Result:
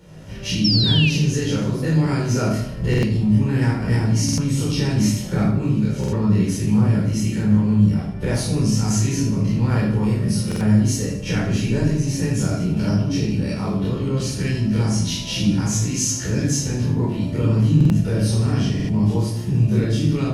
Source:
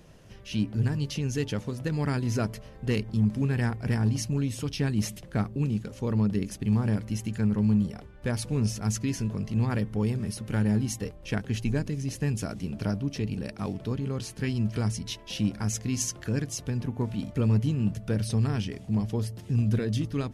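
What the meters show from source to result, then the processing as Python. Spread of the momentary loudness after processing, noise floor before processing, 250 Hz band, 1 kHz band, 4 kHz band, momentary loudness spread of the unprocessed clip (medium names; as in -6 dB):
6 LU, -47 dBFS, +9.0 dB, +7.5 dB, +14.0 dB, 7 LU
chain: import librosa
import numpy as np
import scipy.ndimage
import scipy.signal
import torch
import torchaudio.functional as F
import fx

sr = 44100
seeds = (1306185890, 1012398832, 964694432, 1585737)

p1 = fx.spec_dilate(x, sr, span_ms=60)
p2 = fx.recorder_agc(p1, sr, target_db=-17.5, rise_db_per_s=21.0, max_gain_db=30)
p3 = fx.highpass(p2, sr, hz=110.0, slope=6)
p4 = fx.room_shoebox(p3, sr, seeds[0], volume_m3=630.0, walls='furnished', distance_m=4.5)
p5 = fx.spec_paint(p4, sr, seeds[1], shape='fall', start_s=0.64, length_s=0.46, low_hz=2400.0, high_hz=5600.0, level_db=-18.0)
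p6 = fx.low_shelf(p5, sr, hz=210.0, db=6.5)
p7 = p6 + fx.echo_feedback(p6, sr, ms=77, feedback_pct=48, wet_db=-10.5, dry=0)
p8 = fx.dynamic_eq(p7, sr, hz=6200.0, q=1.6, threshold_db=-42.0, ratio=4.0, max_db=4)
p9 = fx.buffer_glitch(p8, sr, at_s=(2.89, 4.24, 5.99, 10.47, 17.76, 18.75), block=2048, repeats=2)
y = p9 * librosa.db_to_amplitude(-4.5)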